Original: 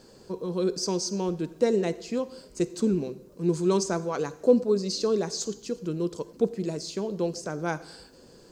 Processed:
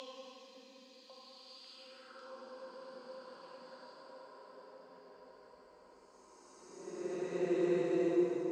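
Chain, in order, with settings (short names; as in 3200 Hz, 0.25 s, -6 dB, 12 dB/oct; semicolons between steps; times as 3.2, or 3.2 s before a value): Paulstretch 20×, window 0.10 s, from 2.23; band-pass sweep 3700 Hz -> 990 Hz, 1.71–2.36; delay with a stepping band-pass 0.548 s, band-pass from 300 Hz, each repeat 1.4 oct, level -1 dB; gain +5 dB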